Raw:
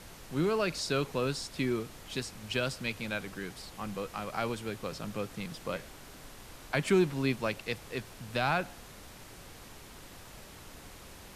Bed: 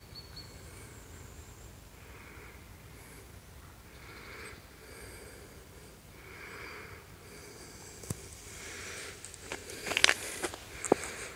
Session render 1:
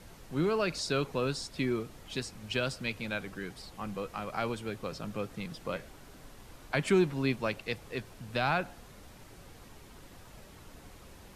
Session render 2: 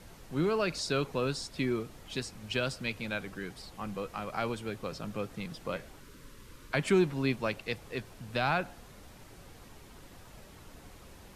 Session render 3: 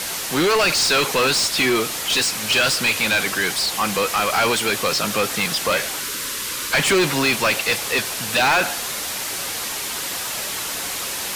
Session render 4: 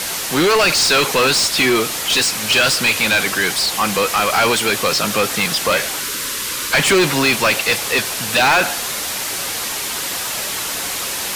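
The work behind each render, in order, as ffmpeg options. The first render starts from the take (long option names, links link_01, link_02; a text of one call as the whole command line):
ffmpeg -i in.wav -af "afftdn=noise_reduction=6:noise_floor=-50" out.wav
ffmpeg -i in.wav -filter_complex "[0:a]asettb=1/sr,asplit=3[link_01][link_02][link_03];[link_01]atrim=end=6.004[link_04];[link_02]atrim=start=6:end=6.74,asetpts=PTS-STARTPTS,afade=type=in:duration=0.004:curve=qsin,afade=type=out:start_time=0.736:duration=0.004:curve=qsin,asuperstop=centerf=730:order=4:qfactor=1.9[link_05];[link_03]atrim=start=6.736[link_06];[link_04][link_05]acrossfade=duration=0.004:curve1=hsin:curve2=qsin[link_07];[link_07][link_06]acrossfade=duration=0.004:curve1=qsin:curve2=hsin" out.wav
ffmpeg -i in.wav -filter_complex "[0:a]crystalizer=i=5.5:c=0,asplit=2[link_01][link_02];[link_02]highpass=frequency=720:poles=1,volume=31dB,asoftclip=type=tanh:threshold=-9dB[link_03];[link_01][link_03]amix=inputs=2:normalize=0,lowpass=frequency=4400:poles=1,volume=-6dB" out.wav
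ffmpeg -i in.wav -af "volume=3.5dB" out.wav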